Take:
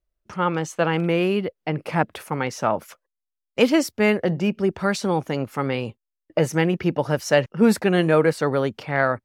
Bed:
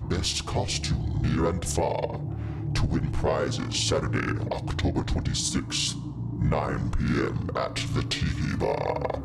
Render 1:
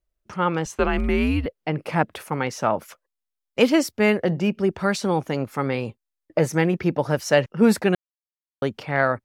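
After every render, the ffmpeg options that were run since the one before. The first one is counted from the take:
ffmpeg -i in.wav -filter_complex "[0:a]asettb=1/sr,asplit=3[link_01][link_02][link_03];[link_01]atrim=end=0.654[link_04];[link_02]atrim=start=0.65:end=1.46,asetpts=PTS-STARTPTS,afade=type=in:duration=0.004:curve=qsin,afade=type=out:start_time=0.806:duration=0.004:curve=qsin,afreqshift=-120[link_05];[link_03]atrim=start=1.456[link_06];[link_04][link_05]acrossfade=duration=0.004:curve1=hsin:curve2=qsin[link_07];[link_07][link_06]acrossfade=duration=0.004:curve1=qsin:curve2=hsin,asettb=1/sr,asplit=3[link_08][link_09][link_10];[link_08]atrim=end=5.344[link_11];[link_09]atrim=start=5.34:end=7.14,asetpts=PTS-STARTPTS,afade=type=in:duration=0.004:curve=qsin,afade=type=out:start_time=1.796:duration=0.004:curve=qsin,bandreject=frequency=2900:width=12[link_12];[link_10]atrim=start=7.136[link_13];[link_11][link_12]acrossfade=duration=0.004:curve1=hsin:curve2=qsin[link_14];[link_14][link_13]acrossfade=duration=0.004:curve1=qsin:curve2=hsin,asplit=3[link_15][link_16][link_17];[link_15]atrim=end=7.95,asetpts=PTS-STARTPTS,afade=type=out:start_time=7.946:duration=0.004:curve=hsin[link_18];[link_16]atrim=start=7.95:end=8.62,asetpts=PTS-STARTPTS,volume=0[link_19];[link_17]atrim=start=8.62,asetpts=PTS-STARTPTS,afade=type=in:duration=0.004:curve=hsin[link_20];[link_18][link_19][link_20]concat=n=3:v=0:a=1" out.wav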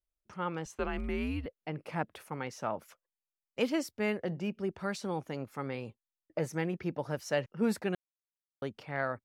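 ffmpeg -i in.wav -af "volume=-13dB" out.wav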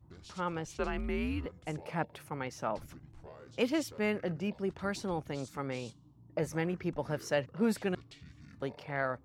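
ffmpeg -i in.wav -i bed.wav -filter_complex "[1:a]volume=-26dB[link_01];[0:a][link_01]amix=inputs=2:normalize=0" out.wav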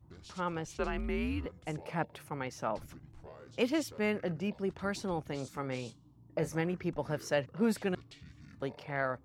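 ffmpeg -i in.wav -filter_complex "[0:a]asettb=1/sr,asplit=3[link_01][link_02][link_03];[link_01]atrim=end=5.284[link_04];[link_02]atrim=start=5.28:end=6.61,asetpts=PTS-STARTPTS,afade=type=in:duration=0.004:curve=qsin,afade=type=out:start_time=1.326:duration=0.004:curve=qsin,asplit=2[link_05][link_06];[link_06]adelay=31,volume=-13.5dB[link_07];[link_05][link_07]amix=inputs=2:normalize=0,atrim=end_sample=58653[link_08];[link_03]atrim=start=6.606[link_09];[link_04][link_08]acrossfade=duration=0.004:curve1=hsin:curve2=qsin[link_10];[link_10][link_09]acrossfade=duration=0.004:curve1=qsin:curve2=hsin" out.wav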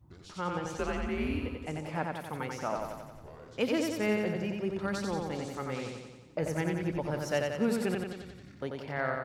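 ffmpeg -i in.wav -af "aecho=1:1:90|180|270|360|450|540|630|720:0.668|0.394|0.233|0.137|0.081|0.0478|0.0282|0.0166" out.wav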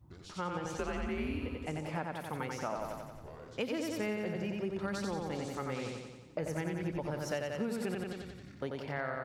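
ffmpeg -i in.wav -af "acompressor=threshold=-32dB:ratio=6" out.wav

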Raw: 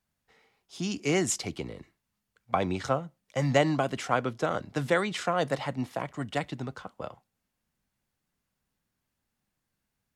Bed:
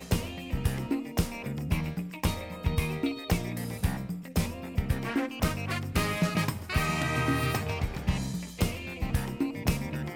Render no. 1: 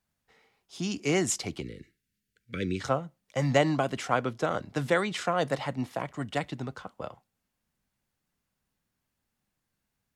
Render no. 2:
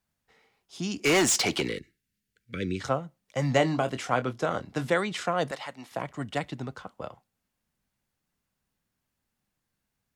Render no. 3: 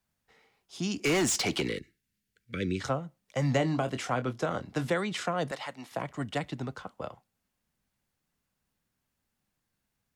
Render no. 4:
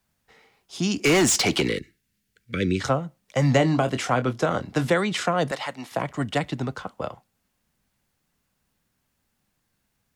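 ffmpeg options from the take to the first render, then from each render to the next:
ffmpeg -i in.wav -filter_complex "[0:a]asplit=3[link_01][link_02][link_03];[link_01]afade=type=out:start_time=1.6:duration=0.02[link_04];[link_02]asuperstop=centerf=850:order=8:qfactor=0.83,afade=type=in:start_time=1.6:duration=0.02,afade=type=out:start_time=2.79:duration=0.02[link_05];[link_03]afade=type=in:start_time=2.79:duration=0.02[link_06];[link_04][link_05][link_06]amix=inputs=3:normalize=0" out.wav
ffmpeg -i in.wav -filter_complex "[0:a]asettb=1/sr,asplit=3[link_01][link_02][link_03];[link_01]atrim=end=1.044[link_04];[link_02]atrim=start=1.04:end=1.79,asetpts=PTS-STARTPTS,afade=type=in:duration=0.004:curve=qsin,afade=type=out:start_time=0.746:duration=0.004:curve=qsin,asplit=2[link_05][link_06];[link_06]highpass=frequency=720:poles=1,volume=24dB,asoftclip=type=tanh:threshold=-15dB[link_07];[link_05][link_07]amix=inputs=2:normalize=0,lowpass=frequency=7800:poles=1,volume=-6dB[link_08];[link_03]atrim=start=1.786[link_09];[link_04][link_08]acrossfade=duration=0.004:curve1=hsin:curve2=qsin[link_10];[link_10][link_09]acrossfade=duration=0.004:curve1=qsin:curve2=hsin,asettb=1/sr,asplit=3[link_11][link_12][link_13];[link_11]atrim=end=3.544[link_14];[link_12]atrim=start=3.54:end=4.85,asetpts=PTS-STARTPTS,afade=type=in:duration=0.004:curve=qsin,afade=type=out:start_time=1.306:duration=0.004:curve=qsin,asplit=2[link_15][link_16];[link_16]adelay=24,volume=-10.5dB[link_17];[link_15][link_17]amix=inputs=2:normalize=0,atrim=end_sample=57771[link_18];[link_13]atrim=start=4.846[link_19];[link_14][link_18]acrossfade=duration=0.004:curve1=hsin:curve2=qsin[link_20];[link_20][link_19]acrossfade=duration=0.004:curve1=qsin:curve2=hsin,asettb=1/sr,asplit=3[link_21][link_22][link_23];[link_21]atrim=end=5.514[link_24];[link_22]atrim=start=5.51:end=5.92,asetpts=PTS-STARTPTS,afade=type=in:duration=0.004:curve=qsin,afade=type=out:start_time=0.406:duration=0.004:curve=qsin,highpass=frequency=1100:poles=1[link_25];[link_23]atrim=start=5.916[link_26];[link_24][link_25]acrossfade=duration=0.004:curve1=hsin:curve2=qsin[link_27];[link_27][link_26]acrossfade=duration=0.004:curve1=qsin:curve2=hsin" out.wav
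ffmpeg -i in.wav -filter_complex "[0:a]acrossover=split=300[link_01][link_02];[link_02]acompressor=threshold=-30dB:ratio=2[link_03];[link_01][link_03]amix=inputs=2:normalize=0" out.wav
ffmpeg -i in.wav -af "volume=7.5dB" out.wav

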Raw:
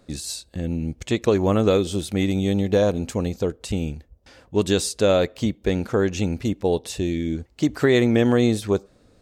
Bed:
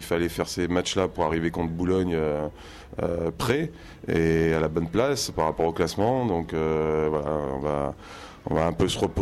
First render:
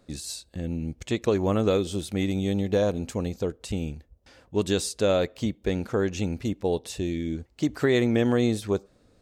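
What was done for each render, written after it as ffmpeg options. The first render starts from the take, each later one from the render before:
ffmpeg -i in.wav -af "volume=-4.5dB" out.wav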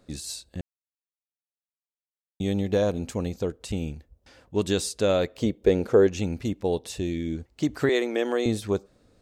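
ffmpeg -i in.wav -filter_complex "[0:a]asettb=1/sr,asplit=3[link_01][link_02][link_03];[link_01]atrim=end=5.384[link_04];[link_02]atrim=start=5.38:end=6.07,asetpts=PTS-STARTPTS,afade=type=in:duration=0.004:curve=qsin,afade=type=out:start_time=0.686:duration=0.004:curve=qsin,equalizer=frequency=450:width=1.5:gain=10[link_05];[link_03]atrim=start=6.066[link_06];[link_04][link_05]acrossfade=duration=0.004:curve1=hsin:curve2=qsin[link_07];[link_07][link_06]acrossfade=duration=0.004:curve1=qsin:curve2=hsin,asettb=1/sr,asplit=3[link_08][link_09][link_10];[link_08]atrim=end=7.894[link_11];[link_09]atrim=start=7.89:end=8.46,asetpts=PTS-STARTPTS,afade=type=in:duration=0.004:curve=qsin,afade=type=out:start_time=0.566:duration=0.004:curve=qsin,highpass=frequency=320:width=0.5412,highpass=frequency=320:width=1.3066[link_12];[link_10]atrim=start=8.456[link_13];[link_11][link_12]acrossfade=duration=0.004:curve1=hsin:curve2=qsin[link_14];[link_14][link_13]acrossfade=duration=0.004:curve1=qsin:curve2=hsin,asplit=3[link_15][link_16][link_17];[link_15]atrim=end=0.61,asetpts=PTS-STARTPTS,afade=type=out:start_time=0.606:duration=0.004:curve=hsin[link_18];[link_16]atrim=start=0.61:end=2.4,asetpts=PTS-STARTPTS,volume=0[link_19];[link_17]atrim=start=2.4,asetpts=PTS-STARTPTS,afade=type=in:duration=0.004:curve=hsin[link_20];[link_18][link_19][link_20]concat=n=3:v=0:a=1" out.wav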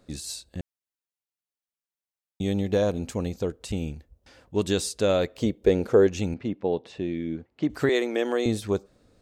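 ffmpeg -i in.wav -filter_complex "[0:a]asettb=1/sr,asplit=3[link_01][link_02][link_03];[link_01]atrim=end=6.344[link_04];[link_02]atrim=start=6.34:end=7.7,asetpts=PTS-STARTPTS,afade=type=in:duration=0.004:curve=qsin,afade=type=out:start_time=1.356:duration=0.004:curve=qsin,highpass=140,lowpass=2600[link_05];[link_03]atrim=start=7.696[link_06];[link_04][link_05]acrossfade=duration=0.004:curve1=hsin:curve2=qsin[link_07];[link_07][link_06]acrossfade=duration=0.004:curve1=qsin:curve2=hsin" out.wav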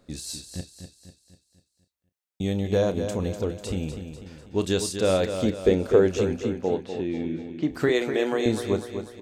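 ffmpeg -i in.wav -filter_complex "[0:a]asplit=2[link_01][link_02];[link_02]adelay=32,volume=-12dB[link_03];[link_01][link_03]amix=inputs=2:normalize=0,aecho=1:1:247|494|741|988|1235|1482:0.376|0.184|0.0902|0.0442|0.0217|0.0106" out.wav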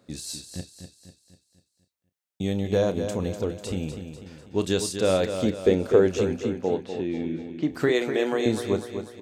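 ffmpeg -i in.wav -af "highpass=79" out.wav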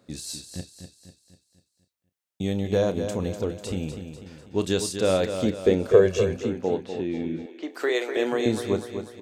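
ffmpeg -i in.wav -filter_complex "[0:a]asettb=1/sr,asplit=3[link_01][link_02][link_03];[link_01]atrim=end=5.914[link_04];[link_02]atrim=start=5.91:end=6.37,asetpts=PTS-STARTPTS,afade=type=in:duration=0.004:curve=qsin,afade=type=out:start_time=0.456:duration=0.004:curve=qsin,aecho=1:1:1.8:0.65,atrim=end_sample=20286[link_05];[link_03]atrim=start=6.366[link_06];[link_04][link_05]acrossfade=duration=0.004:curve1=hsin:curve2=qsin[link_07];[link_07][link_06]acrossfade=duration=0.004:curve1=qsin:curve2=hsin,asettb=1/sr,asplit=3[link_08][link_09][link_10];[link_08]atrim=end=7.464[link_11];[link_09]atrim=start=7.46:end=8.17,asetpts=PTS-STARTPTS,afade=type=in:duration=0.004:curve=qsin,afade=type=out:start_time=0.706:duration=0.004:curve=qsin,highpass=frequency=380:width=0.5412,highpass=frequency=380:width=1.3066[link_12];[link_10]atrim=start=8.166[link_13];[link_11][link_12]acrossfade=duration=0.004:curve1=hsin:curve2=qsin[link_14];[link_14][link_13]acrossfade=duration=0.004:curve1=qsin:curve2=hsin" out.wav

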